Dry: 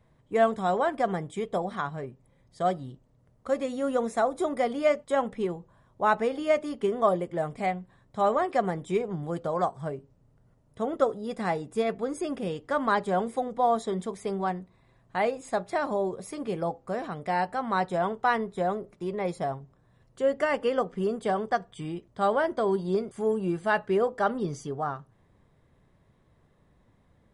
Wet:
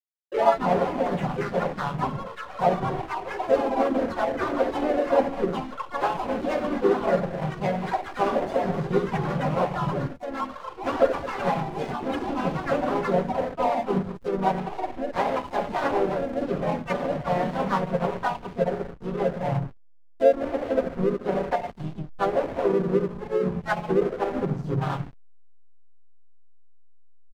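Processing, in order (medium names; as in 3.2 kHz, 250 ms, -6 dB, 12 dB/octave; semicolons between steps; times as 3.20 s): comb 7.3 ms, depth 86%; gate with hold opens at -57 dBFS; spectral noise reduction 19 dB; reverberation RT60 0.75 s, pre-delay 5 ms, DRR -1 dB; low-pass that closes with the level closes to 510 Hz, closed at -16.5 dBFS; hysteresis with a dead band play -24.5 dBFS; dynamic bell 320 Hz, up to -4 dB, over -34 dBFS, Q 1.2; ever faster or slower copies 144 ms, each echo +6 st, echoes 2, each echo -6 dB; harmony voices -3 st -9 dB, +4 st -8 dB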